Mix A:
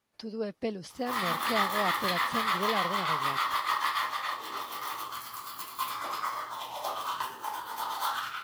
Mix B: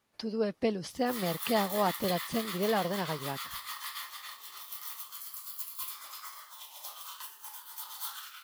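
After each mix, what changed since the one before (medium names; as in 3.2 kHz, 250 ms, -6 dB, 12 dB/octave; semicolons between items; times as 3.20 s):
speech +3.5 dB; background: add differentiator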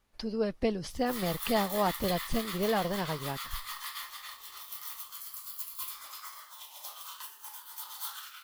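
master: remove high-pass 130 Hz 12 dB/octave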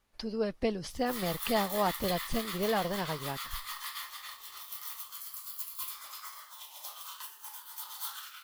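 background: add high-pass 150 Hz; master: add bass shelf 430 Hz -2.5 dB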